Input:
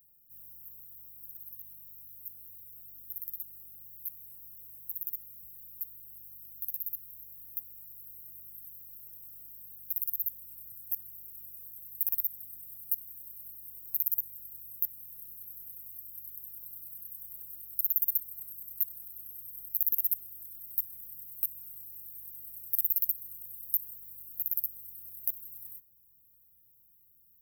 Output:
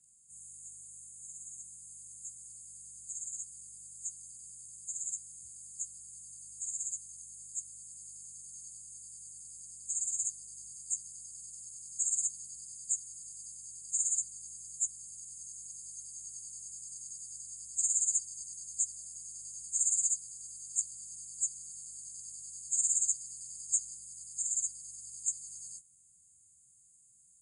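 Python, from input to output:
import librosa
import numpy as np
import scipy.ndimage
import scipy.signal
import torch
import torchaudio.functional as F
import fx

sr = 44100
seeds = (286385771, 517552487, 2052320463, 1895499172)

y = fx.partial_stretch(x, sr, pct=83)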